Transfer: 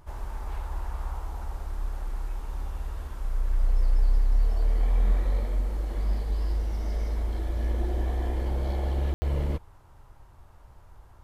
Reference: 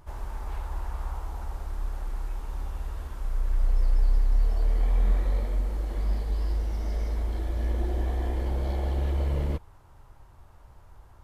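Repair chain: room tone fill 9.14–9.22

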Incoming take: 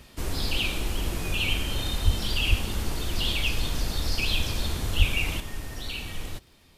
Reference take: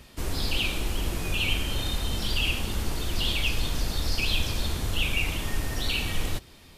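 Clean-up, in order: de-click; 2.04–2.16 HPF 140 Hz 24 dB/oct; 2.49–2.61 HPF 140 Hz 24 dB/oct; 4.98–5.1 HPF 140 Hz 24 dB/oct; gain 0 dB, from 5.4 s +6.5 dB

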